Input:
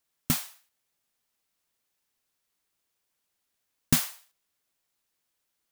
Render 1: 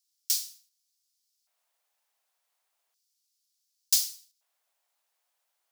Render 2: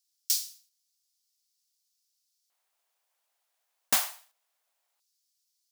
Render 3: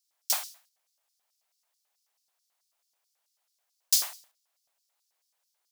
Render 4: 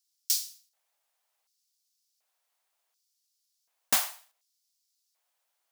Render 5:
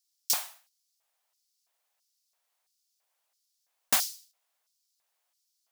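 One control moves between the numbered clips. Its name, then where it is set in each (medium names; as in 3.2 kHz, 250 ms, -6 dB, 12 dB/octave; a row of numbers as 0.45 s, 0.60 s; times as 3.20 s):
LFO high-pass, rate: 0.34 Hz, 0.2 Hz, 4.6 Hz, 0.68 Hz, 1.5 Hz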